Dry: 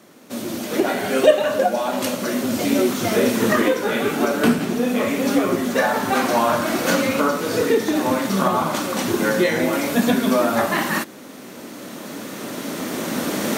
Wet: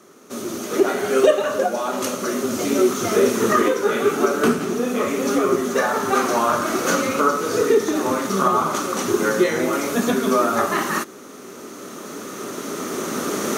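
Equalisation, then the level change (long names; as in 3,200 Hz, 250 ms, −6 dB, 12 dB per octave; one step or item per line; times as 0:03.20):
thirty-one-band graphic EQ 400 Hz +11 dB, 1,250 Hz +11 dB, 6,300 Hz +9 dB, 10,000 Hz +4 dB
−4.0 dB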